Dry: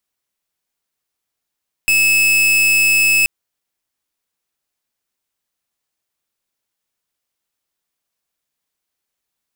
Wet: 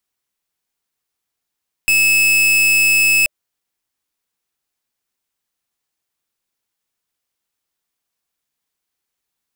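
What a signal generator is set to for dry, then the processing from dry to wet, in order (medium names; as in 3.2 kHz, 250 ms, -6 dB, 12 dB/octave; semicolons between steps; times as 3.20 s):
pulse 2.6 kHz, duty 42% -13 dBFS 1.38 s
band-stop 600 Hz, Q 12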